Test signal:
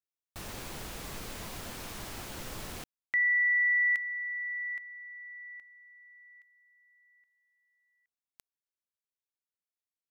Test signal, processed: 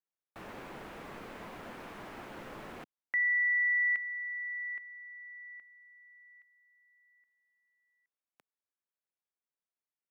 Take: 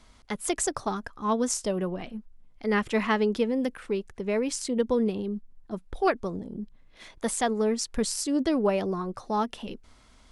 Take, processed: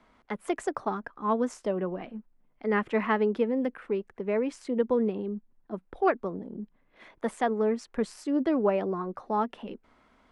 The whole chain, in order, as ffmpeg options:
ffmpeg -i in.wav -filter_complex "[0:a]acrossover=split=170 2500:gain=0.2 1 0.112[link_01][link_02][link_03];[link_01][link_02][link_03]amix=inputs=3:normalize=0" out.wav

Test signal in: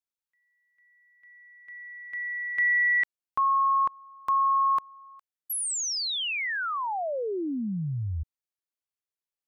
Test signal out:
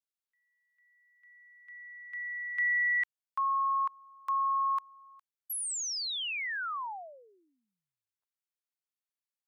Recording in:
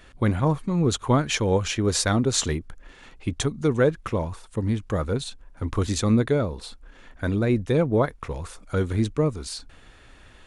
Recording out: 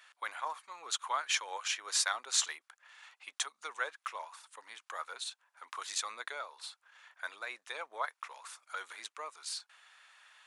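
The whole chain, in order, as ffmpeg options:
ffmpeg -i in.wav -af "highpass=frequency=910:width=0.5412,highpass=frequency=910:width=1.3066,volume=-5dB" out.wav

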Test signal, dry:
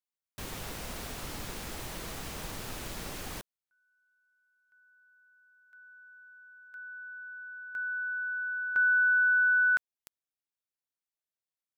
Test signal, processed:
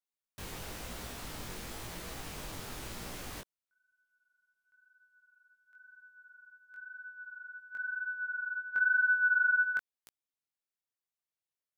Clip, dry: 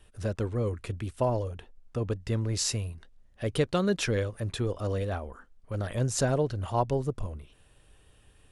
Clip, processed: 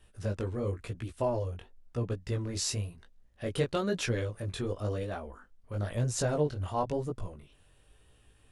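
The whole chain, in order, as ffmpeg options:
ffmpeg -i in.wav -af "flanger=delay=16.5:depth=5.4:speed=0.98" out.wav

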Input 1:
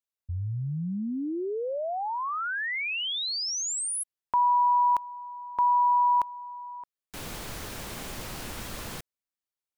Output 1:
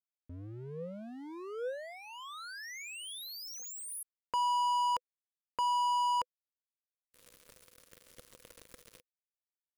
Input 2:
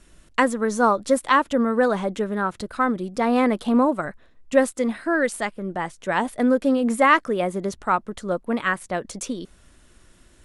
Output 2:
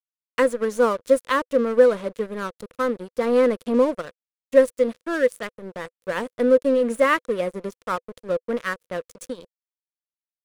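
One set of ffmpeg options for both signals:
ffmpeg -i in.wav -af "aeval=exprs='sgn(val(0))*max(abs(val(0))-0.0266,0)':channel_layout=same,equalizer=frequency=500:width_type=o:width=0.33:gain=12,equalizer=frequency=800:width_type=o:width=0.33:gain=-11,equalizer=frequency=10000:width_type=o:width=0.33:gain=4,volume=-2.5dB" out.wav

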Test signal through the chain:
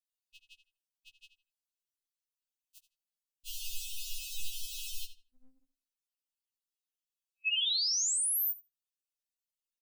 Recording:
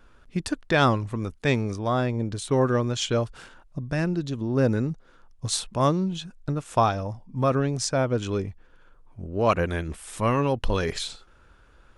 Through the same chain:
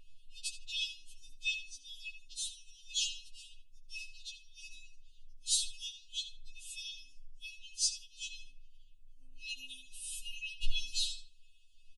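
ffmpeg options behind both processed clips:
ffmpeg -i in.wav -filter_complex "[0:a]afftfilt=real='re*(1-between(b*sr/4096,100,2500))':imag='im*(1-between(b*sr/4096,100,2500))':win_size=4096:overlap=0.75,asplit=2[link_01][link_02];[link_02]adelay=79,lowpass=frequency=3700:poles=1,volume=-9dB,asplit=2[link_03][link_04];[link_04]adelay=79,lowpass=frequency=3700:poles=1,volume=0.25,asplit=2[link_05][link_06];[link_06]adelay=79,lowpass=frequency=3700:poles=1,volume=0.25[link_07];[link_01][link_03][link_05][link_07]amix=inputs=4:normalize=0,afftfilt=real='re*3.46*eq(mod(b,12),0)':imag='im*3.46*eq(mod(b,12),0)':win_size=2048:overlap=0.75" out.wav

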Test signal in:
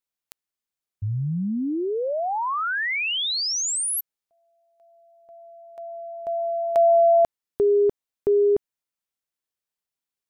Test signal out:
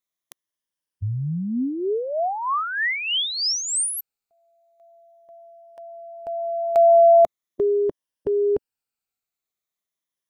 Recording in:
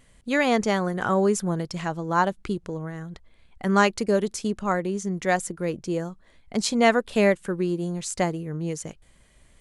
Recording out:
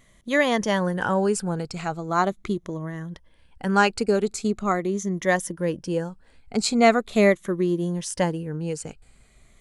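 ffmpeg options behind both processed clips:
ffmpeg -i in.wav -af "afftfilt=real='re*pow(10,8/40*sin(2*PI*(1.2*log(max(b,1)*sr/1024/100)/log(2)-(-0.41)*(pts-256)/sr)))':imag='im*pow(10,8/40*sin(2*PI*(1.2*log(max(b,1)*sr/1024/100)/log(2)-(-0.41)*(pts-256)/sr)))':win_size=1024:overlap=0.75" out.wav

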